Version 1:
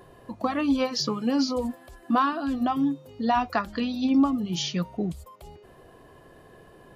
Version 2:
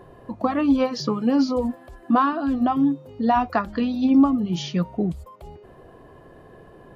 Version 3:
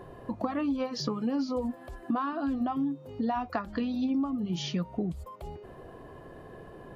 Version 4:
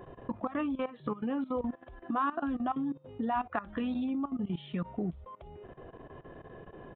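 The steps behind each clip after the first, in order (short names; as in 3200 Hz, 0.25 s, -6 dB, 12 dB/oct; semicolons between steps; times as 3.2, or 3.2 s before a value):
high shelf 2400 Hz -11.5 dB; gain +5 dB
compressor 4:1, threshold -29 dBFS, peak gain reduction 14.5 dB
level quantiser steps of 16 dB; downsampling 8000 Hz; dynamic EQ 1400 Hz, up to +5 dB, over -51 dBFS, Q 0.88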